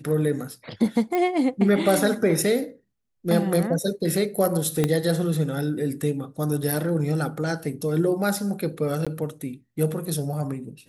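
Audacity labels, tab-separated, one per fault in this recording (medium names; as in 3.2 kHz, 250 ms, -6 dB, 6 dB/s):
1.150000	1.150000	pop -14 dBFS
4.840000	4.840000	pop -8 dBFS
9.050000	9.070000	dropout 16 ms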